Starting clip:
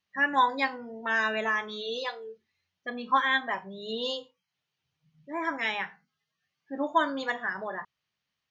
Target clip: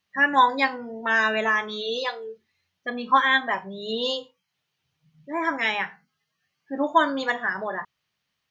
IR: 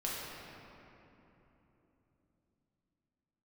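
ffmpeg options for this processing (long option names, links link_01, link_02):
-filter_complex "[0:a]asettb=1/sr,asplit=3[link_01][link_02][link_03];[link_01]atrim=end=5.704[link_04];[link_02]atrim=start=5.7:end=6.84,asetpts=PTS-STARTPTS,afade=type=in:duration=0.004:curve=qsin,afade=type=out:start_time=1.136:duration=0.004:curve=qsin,bandreject=frequency=3600:width=15[link_05];[link_03]atrim=start=6.836[link_06];[link_04][link_05]acrossfade=duration=0.004:curve1=hsin:curve2=qsin[link_07];[link_07][link_06]acrossfade=duration=0.004:curve1=qsin:curve2=hsin,volume=5.5dB"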